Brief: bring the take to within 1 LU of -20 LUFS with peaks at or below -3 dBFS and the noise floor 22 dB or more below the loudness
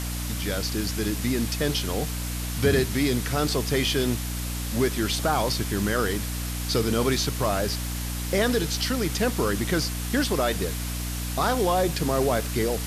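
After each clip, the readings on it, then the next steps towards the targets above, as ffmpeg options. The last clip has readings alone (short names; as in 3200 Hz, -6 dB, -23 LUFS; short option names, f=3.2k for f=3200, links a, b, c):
hum 60 Hz; harmonics up to 300 Hz; hum level -29 dBFS; noise floor -30 dBFS; noise floor target -48 dBFS; loudness -25.5 LUFS; peak -9.5 dBFS; loudness target -20.0 LUFS
-> -af "bandreject=f=60:t=h:w=6,bandreject=f=120:t=h:w=6,bandreject=f=180:t=h:w=6,bandreject=f=240:t=h:w=6,bandreject=f=300:t=h:w=6"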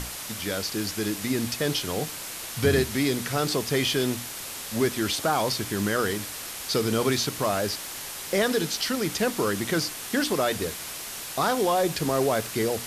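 hum none; noise floor -37 dBFS; noise floor target -49 dBFS
-> -af "afftdn=nr=12:nf=-37"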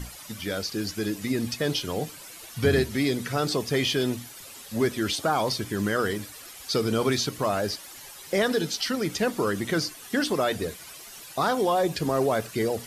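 noise floor -44 dBFS; noise floor target -49 dBFS
-> -af "afftdn=nr=6:nf=-44"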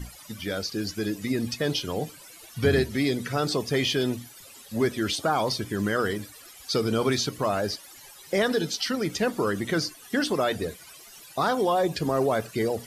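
noise floor -48 dBFS; noise floor target -49 dBFS
-> -af "afftdn=nr=6:nf=-48"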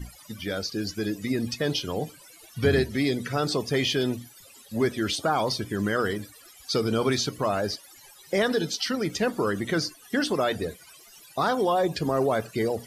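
noise floor -51 dBFS; loudness -27.0 LUFS; peak -10.5 dBFS; loudness target -20.0 LUFS
-> -af "volume=7dB"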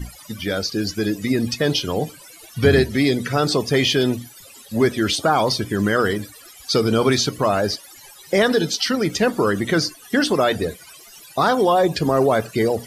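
loudness -20.0 LUFS; peak -3.5 dBFS; noise floor -44 dBFS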